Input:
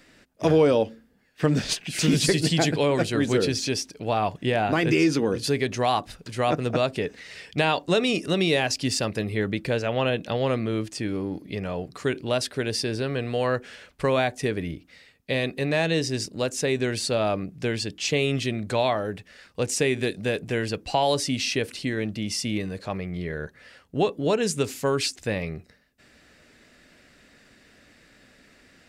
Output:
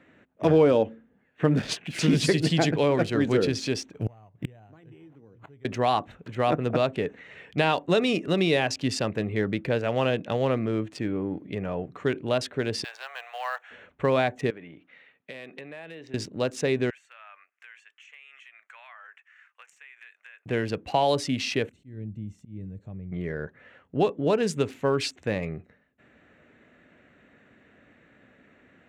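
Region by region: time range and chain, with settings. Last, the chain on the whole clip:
0:03.93–0:05.65: bad sample-rate conversion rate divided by 8×, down none, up hold + parametric band 110 Hz +14 dB 0.8 octaves + gate with flip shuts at −16 dBFS, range −31 dB
0:12.84–0:13.71: one scale factor per block 5 bits + elliptic high-pass filter 730 Hz, stop band 70 dB + high-shelf EQ 12,000 Hz +8 dB
0:14.50–0:16.14: downward compressor 12 to 1, threshold −33 dBFS + band-pass filter 120–3,400 Hz + spectral tilt +3 dB per octave
0:16.90–0:20.46: high-pass filter 1,400 Hz 24 dB per octave + parametric band 3,900 Hz −12.5 dB 0.58 octaves + downward compressor, threshold −40 dBFS
0:21.69–0:23.12: drawn EQ curve 110 Hz 0 dB, 1,100 Hz −27 dB, 3,000 Hz −25 dB, 8,200 Hz −9 dB + volume swells 171 ms + one half of a high-frequency compander encoder only
whole clip: adaptive Wiener filter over 9 samples; high-pass filter 83 Hz; high-shelf EQ 6,200 Hz −10 dB

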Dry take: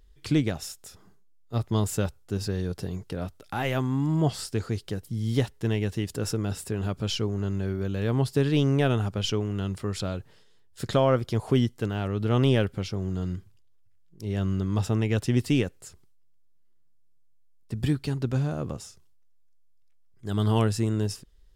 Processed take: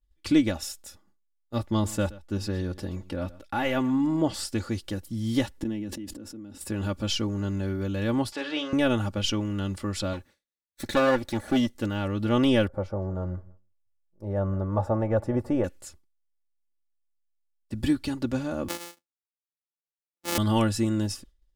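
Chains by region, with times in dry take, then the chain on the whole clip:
0:01.65–0:04.34: high-shelf EQ 5,500 Hz −7 dB + single-tap delay 124 ms −19.5 dB
0:05.58–0:06.61: parametric band 270 Hz +14.5 dB 1.3 octaves + gate with flip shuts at −20 dBFS, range −25 dB + level that may fall only so fast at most 25 dB per second
0:08.32–0:08.73: converter with a step at zero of −35.5 dBFS + band-pass filter 610–4,200 Hz + double-tracking delay 46 ms −10.5 dB
0:10.13–0:11.75: lower of the sound and its delayed copy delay 0.49 ms + low-shelf EQ 180 Hz −6.5 dB
0:12.67–0:15.64: drawn EQ curve 160 Hz 0 dB, 270 Hz −8 dB, 570 Hz +10 dB, 850 Hz +7 dB, 1,600 Hz −4 dB, 2,900 Hz −23 dB, 10,000 Hz −18 dB + repeating echo 165 ms, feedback 36%, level −22.5 dB
0:18.68–0:20.38: samples sorted by size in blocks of 256 samples + high-pass filter 260 Hz + high-shelf EQ 3,200 Hz +10.5 dB
whole clip: downward expander −44 dBFS; comb filter 3.5 ms, depth 78%

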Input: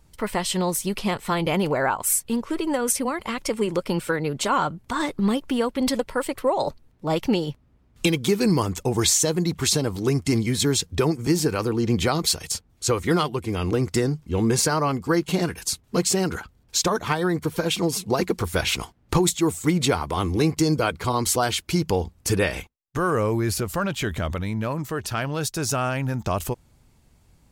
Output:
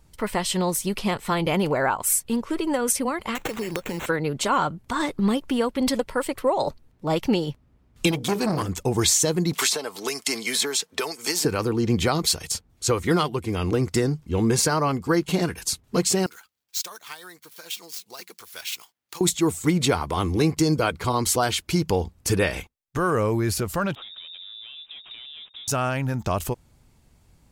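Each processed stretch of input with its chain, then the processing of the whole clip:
0:03.35–0:04.06: high-shelf EQ 2,300 Hz +9.5 dB + downward compressor, threshold −25 dBFS + sample-rate reduction 4,900 Hz
0:08.11–0:08.69: mains-hum notches 60/120/180/240/300/360/420/480/540/600 Hz + saturating transformer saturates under 710 Hz
0:09.53–0:11.45: high-pass filter 610 Hz + comb filter 4.6 ms, depth 31% + multiband upward and downward compressor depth 100%
0:16.26–0:19.21: running median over 5 samples + first difference
0:23.95–0:25.68: running median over 25 samples + voice inversion scrambler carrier 3,700 Hz + downward compressor, threshold −38 dBFS
whole clip: no processing

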